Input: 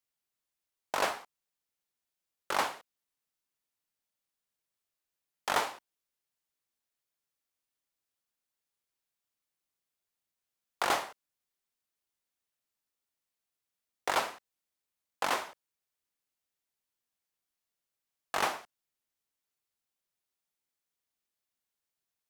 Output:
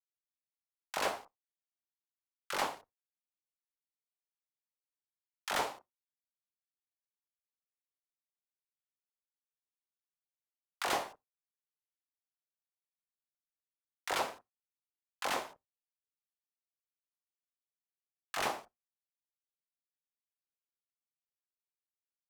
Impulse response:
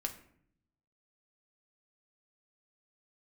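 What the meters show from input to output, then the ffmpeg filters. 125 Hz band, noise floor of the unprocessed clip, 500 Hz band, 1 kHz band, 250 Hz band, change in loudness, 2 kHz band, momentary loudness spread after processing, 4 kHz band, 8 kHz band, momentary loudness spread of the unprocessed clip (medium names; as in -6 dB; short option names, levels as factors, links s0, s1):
-2.0 dB, under -85 dBFS, -3.0 dB, -4.5 dB, -2.0 dB, -4.0 dB, -4.0 dB, 13 LU, -2.5 dB, -2.5 dB, 14 LU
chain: -filter_complex "[0:a]aeval=exprs='sgn(val(0))*max(abs(val(0))-0.0015,0)':c=same,acrossover=split=1200[s0][s1];[s0]adelay=30[s2];[s2][s1]amix=inputs=2:normalize=0,asplit=2[s3][s4];[1:a]atrim=start_sample=2205,atrim=end_sample=3969,lowshelf=f=270:g=7[s5];[s4][s5]afir=irnorm=-1:irlink=0,volume=0.119[s6];[s3][s6]amix=inputs=2:normalize=0,volume=0.708"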